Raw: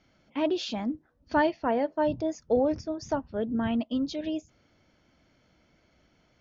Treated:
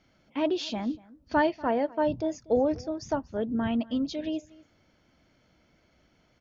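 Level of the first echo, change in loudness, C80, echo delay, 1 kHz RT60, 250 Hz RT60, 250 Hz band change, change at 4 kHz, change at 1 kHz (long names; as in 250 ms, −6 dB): −22.5 dB, 0.0 dB, no reverb audible, 240 ms, no reverb audible, no reverb audible, 0.0 dB, 0.0 dB, 0.0 dB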